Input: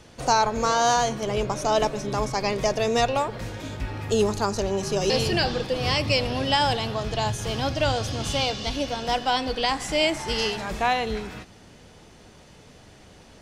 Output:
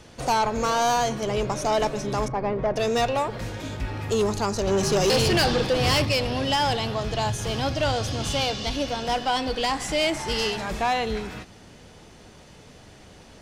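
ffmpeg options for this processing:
-filter_complex "[0:a]asettb=1/sr,asplit=3[s0][s1][s2];[s0]atrim=end=2.284[s3];[s1]atrim=start=2.28:end=2.76,asetpts=PTS-STARTPTS,afade=t=in:d=0.004:c=qsin,afade=t=out:st=0.476:d=0.004:c=qsin,lowpass=1300[s4];[s2]atrim=start=2.756[s5];[s3][s4]acrossfade=d=0.004:c1=hsin:c2=qsin[s6];[s6][s5]acrossfade=d=0.004:c1=qsin:c2=hsin,asettb=1/sr,asplit=3[s7][s8][s9];[s7]atrim=end=4.674[s10];[s8]atrim=start=4.67:end=6.05,asetpts=PTS-STARTPTS,afade=t=in:d=0.004:c=qsin,afade=t=out:st=1.376:d=0.004:c=qsin,acontrast=45[s11];[s9]atrim=start=6.046[s12];[s10][s11]acrossfade=d=0.004:c1=hsin:c2=qsin[s13];[s13][s12]acrossfade=d=0.004:c1=qsin:c2=hsin,asoftclip=type=tanh:threshold=0.126,volume=1.19"

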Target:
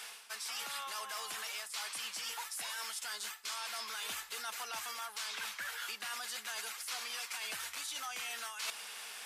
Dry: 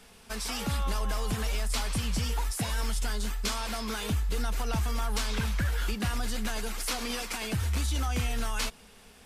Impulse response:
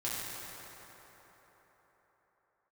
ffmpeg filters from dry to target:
-af "highpass=1100,areverse,acompressor=threshold=0.00355:ratio=16,areverse,volume=3.55"

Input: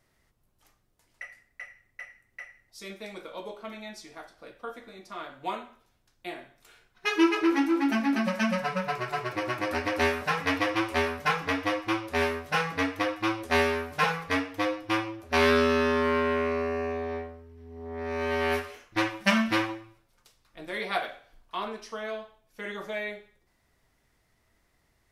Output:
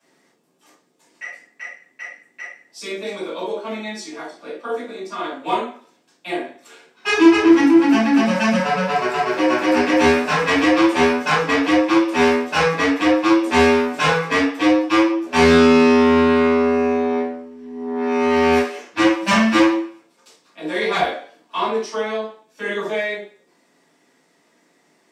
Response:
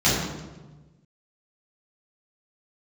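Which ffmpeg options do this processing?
-filter_complex "[0:a]highpass=f=250:w=0.5412,highpass=f=250:w=1.3066,asoftclip=type=tanh:threshold=0.0841[s0];[1:a]atrim=start_sample=2205,atrim=end_sample=4410,asetrate=52920,aresample=44100[s1];[s0][s1]afir=irnorm=-1:irlink=0,volume=0.631"

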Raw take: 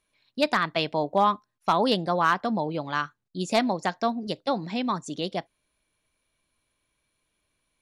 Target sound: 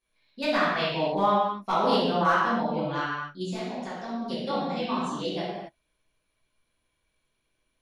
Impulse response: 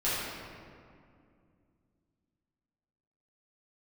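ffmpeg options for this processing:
-filter_complex "[0:a]asplit=3[s0][s1][s2];[s0]afade=t=out:st=3.42:d=0.02[s3];[s1]acompressor=threshold=0.0282:ratio=6,afade=t=in:st=3.42:d=0.02,afade=t=out:st=4.09:d=0.02[s4];[s2]afade=t=in:st=4.09:d=0.02[s5];[s3][s4][s5]amix=inputs=3:normalize=0[s6];[1:a]atrim=start_sample=2205,afade=t=out:st=0.4:d=0.01,atrim=end_sample=18081,asetrate=52920,aresample=44100[s7];[s6][s7]afir=irnorm=-1:irlink=0,volume=0.376"

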